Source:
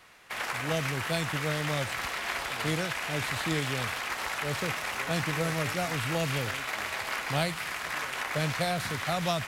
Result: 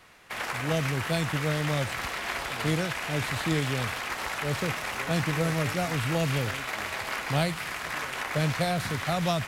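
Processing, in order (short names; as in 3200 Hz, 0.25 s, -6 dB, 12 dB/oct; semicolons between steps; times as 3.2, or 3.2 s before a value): low shelf 470 Hz +5 dB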